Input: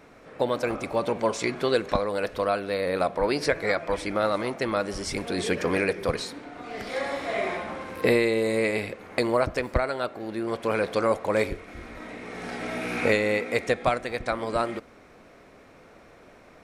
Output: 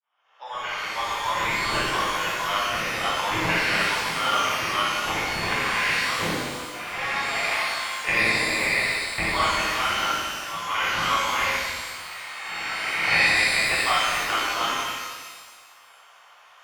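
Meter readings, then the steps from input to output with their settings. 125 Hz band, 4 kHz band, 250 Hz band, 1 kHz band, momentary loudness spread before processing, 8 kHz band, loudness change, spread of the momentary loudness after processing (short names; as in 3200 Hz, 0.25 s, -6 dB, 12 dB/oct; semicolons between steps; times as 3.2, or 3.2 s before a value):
-2.0 dB, +11.5 dB, -6.5 dB, +6.0 dB, 10 LU, +9.5 dB, +3.5 dB, 11 LU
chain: opening faded in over 0.91 s; HPF 990 Hz 24 dB/oct; low-pass opened by the level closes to 1300 Hz, open at -29 dBFS; sample-and-hold 10×; flutter echo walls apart 10.2 m, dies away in 0.51 s; downsampling 11025 Hz; shimmer reverb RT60 1.5 s, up +12 st, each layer -8 dB, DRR -10 dB; gain -1.5 dB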